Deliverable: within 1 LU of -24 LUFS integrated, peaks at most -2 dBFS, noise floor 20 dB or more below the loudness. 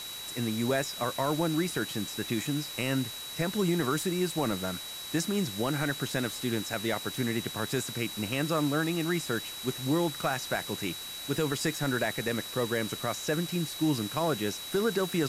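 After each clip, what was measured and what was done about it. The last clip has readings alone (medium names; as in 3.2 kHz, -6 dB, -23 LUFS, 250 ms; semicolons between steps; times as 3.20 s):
steady tone 3.9 kHz; tone level -40 dBFS; noise floor -40 dBFS; noise floor target -51 dBFS; loudness -30.5 LUFS; peak level -16.0 dBFS; loudness target -24.0 LUFS
-> band-stop 3.9 kHz, Q 30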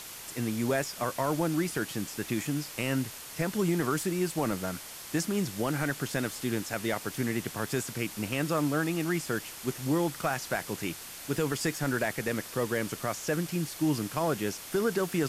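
steady tone not found; noise floor -44 dBFS; noise floor target -51 dBFS
-> noise reduction 7 dB, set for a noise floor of -44 dBFS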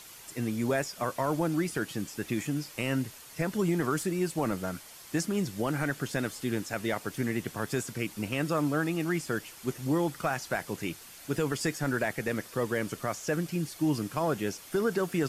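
noise floor -49 dBFS; noise floor target -52 dBFS
-> noise reduction 6 dB, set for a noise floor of -49 dBFS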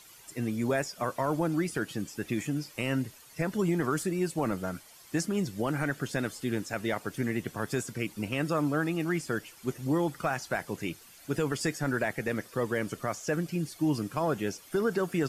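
noise floor -54 dBFS; loudness -31.5 LUFS; peak level -17.0 dBFS; loudness target -24.0 LUFS
-> trim +7.5 dB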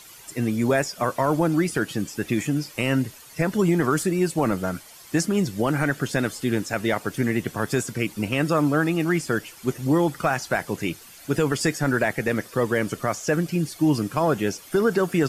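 loudness -24.0 LUFS; peak level -9.5 dBFS; noise floor -46 dBFS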